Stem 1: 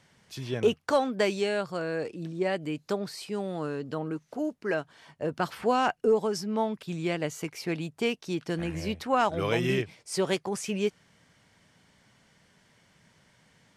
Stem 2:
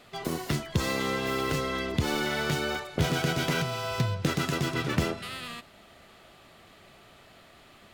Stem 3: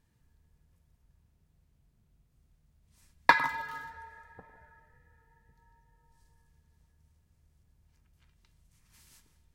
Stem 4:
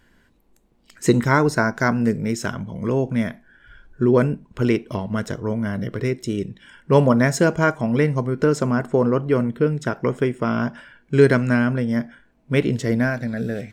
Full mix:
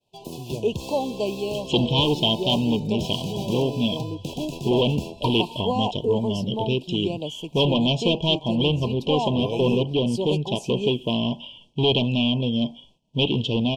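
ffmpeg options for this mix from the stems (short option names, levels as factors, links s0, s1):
-filter_complex "[0:a]highshelf=f=5000:g=-7.5,volume=1[s0];[1:a]volume=0.562[s1];[2:a]adelay=1950,volume=0.562[s2];[3:a]asoftclip=type=hard:threshold=0.158,lowpass=f=3200:t=q:w=15,adelay=650,volume=0.841[s3];[s0][s1][s2][s3]amix=inputs=4:normalize=0,agate=range=0.0224:threshold=0.00398:ratio=3:detection=peak,asuperstop=centerf=1600:order=20:qfactor=1.1"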